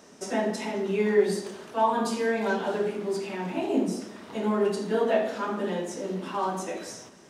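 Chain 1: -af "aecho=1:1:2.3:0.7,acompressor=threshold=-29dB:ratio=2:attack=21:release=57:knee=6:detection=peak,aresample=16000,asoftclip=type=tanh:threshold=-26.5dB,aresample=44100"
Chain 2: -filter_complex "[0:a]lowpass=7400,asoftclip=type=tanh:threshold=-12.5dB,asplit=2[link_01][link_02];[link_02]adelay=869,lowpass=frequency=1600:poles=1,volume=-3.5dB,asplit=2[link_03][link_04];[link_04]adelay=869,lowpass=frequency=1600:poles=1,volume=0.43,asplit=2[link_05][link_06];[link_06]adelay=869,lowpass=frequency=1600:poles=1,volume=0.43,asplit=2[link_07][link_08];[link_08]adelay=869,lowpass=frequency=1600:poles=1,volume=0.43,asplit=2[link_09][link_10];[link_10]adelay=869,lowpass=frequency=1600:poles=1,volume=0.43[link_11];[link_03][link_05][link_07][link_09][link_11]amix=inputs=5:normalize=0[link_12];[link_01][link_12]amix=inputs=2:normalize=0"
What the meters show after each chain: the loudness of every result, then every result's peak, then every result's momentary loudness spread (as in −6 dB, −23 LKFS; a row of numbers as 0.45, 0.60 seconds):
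−32.5, −27.0 LKFS; −26.0, −13.0 dBFS; 5, 7 LU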